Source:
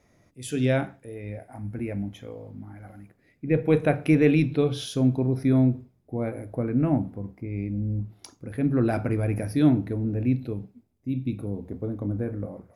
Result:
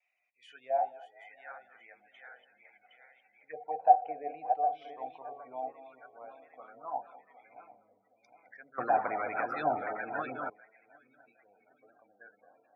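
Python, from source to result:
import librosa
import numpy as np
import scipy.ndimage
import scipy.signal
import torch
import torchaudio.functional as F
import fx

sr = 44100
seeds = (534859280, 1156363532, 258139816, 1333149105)

y = fx.reverse_delay_fb(x, sr, ms=382, feedback_pct=73, wet_db=-6.5)
y = scipy.signal.sosfilt(scipy.signal.butter(2, 8300.0, 'lowpass', fs=sr, output='sos'), y)
y = fx.low_shelf_res(y, sr, hz=430.0, db=-7.5, q=1.5)
y = fx.spec_gate(y, sr, threshold_db=-25, keep='strong')
y = scipy.signal.sosfilt(scipy.signal.butter(2, 190.0, 'highpass', fs=sr, output='sos'), y)
y = fx.auto_wah(y, sr, base_hz=750.0, top_hz=2500.0, q=8.4, full_db=-23.0, direction='down')
y = fx.echo_banded(y, sr, ms=214, feedback_pct=48, hz=1100.0, wet_db=-18)
y = fx.vibrato(y, sr, rate_hz=1.6, depth_cents=55.0)
y = fx.small_body(y, sr, hz=(740.0, 3000.0), ring_ms=40, db=13)
y = fx.spectral_comp(y, sr, ratio=2.0, at=(8.78, 10.5))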